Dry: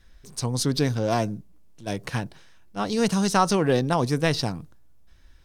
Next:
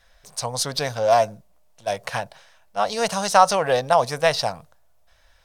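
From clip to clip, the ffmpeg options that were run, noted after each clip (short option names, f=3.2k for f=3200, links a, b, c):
-af "lowshelf=f=450:t=q:w=3:g=-10.5,volume=3.5dB"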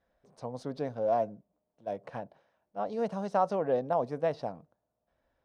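-af "bandpass=f=290:t=q:w=1.8:csg=0"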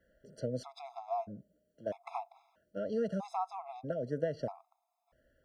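-filter_complex "[0:a]acrossover=split=100[a][b];[b]acompressor=threshold=-36dB:ratio=6[c];[a][c]amix=inputs=2:normalize=0,afftfilt=real='re*gt(sin(2*PI*0.78*pts/sr)*(1-2*mod(floor(b*sr/1024/680),2)),0)':imag='im*gt(sin(2*PI*0.78*pts/sr)*(1-2*mod(floor(b*sr/1024/680),2)),0)':win_size=1024:overlap=0.75,volume=6.5dB"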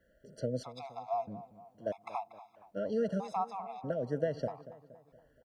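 -filter_complex "[0:a]asplit=2[a][b];[b]adelay=235,lowpass=f=2.8k:p=1,volume=-15.5dB,asplit=2[c][d];[d]adelay=235,lowpass=f=2.8k:p=1,volume=0.51,asplit=2[e][f];[f]adelay=235,lowpass=f=2.8k:p=1,volume=0.51,asplit=2[g][h];[h]adelay=235,lowpass=f=2.8k:p=1,volume=0.51,asplit=2[i][j];[j]adelay=235,lowpass=f=2.8k:p=1,volume=0.51[k];[a][c][e][g][i][k]amix=inputs=6:normalize=0,volume=1.5dB"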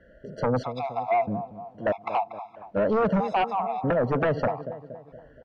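-af "aeval=exprs='0.119*sin(PI/2*3.55*val(0)/0.119)':c=same,lowpass=2.6k"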